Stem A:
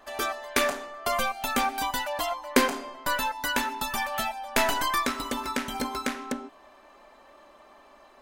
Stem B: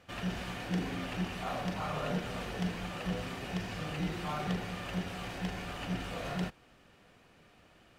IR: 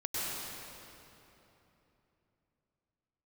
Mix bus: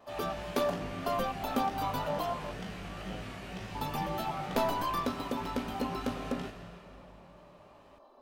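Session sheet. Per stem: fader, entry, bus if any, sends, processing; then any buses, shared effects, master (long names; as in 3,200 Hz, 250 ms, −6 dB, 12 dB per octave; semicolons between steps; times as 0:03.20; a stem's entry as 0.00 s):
−9.5 dB, 0.00 s, muted 0:02.51–0:03.75, no send, octave-band graphic EQ 250/500/1,000/2,000/4,000/8,000 Hz +6/+7/+6/−11/+3/−9 dB
−0.5 dB, 0.00 s, send −10 dB, tuned comb filter 52 Hz, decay 0.24 s, harmonics all, mix 100%; tape wow and flutter 77 cents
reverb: on, RT60 3.2 s, pre-delay 93 ms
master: no processing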